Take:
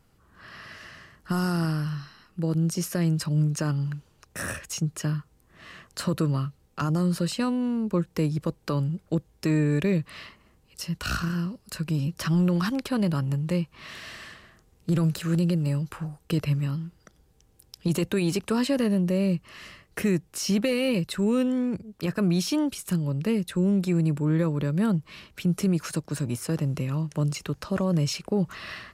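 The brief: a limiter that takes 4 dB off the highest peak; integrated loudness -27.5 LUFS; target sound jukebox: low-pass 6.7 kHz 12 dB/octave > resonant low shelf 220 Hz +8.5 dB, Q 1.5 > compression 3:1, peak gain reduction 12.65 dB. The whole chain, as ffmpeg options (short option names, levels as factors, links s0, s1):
-af "alimiter=limit=0.112:level=0:latency=1,lowpass=6700,lowshelf=f=220:t=q:w=1.5:g=8.5,acompressor=threshold=0.0355:ratio=3,volume=1.41"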